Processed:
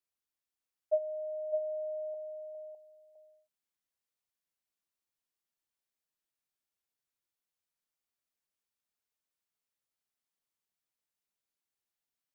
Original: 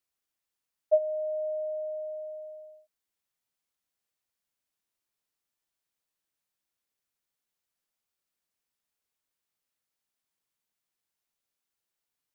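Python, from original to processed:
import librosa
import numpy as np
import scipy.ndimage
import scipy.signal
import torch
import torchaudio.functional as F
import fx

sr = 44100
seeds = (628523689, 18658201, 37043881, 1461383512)

p1 = fx.steep_highpass(x, sr, hz=680.0, slope=36, at=(2.14, 2.55))
p2 = p1 + fx.echo_single(p1, sr, ms=607, db=-6.5, dry=0)
y = p2 * librosa.db_to_amplitude(-6.5)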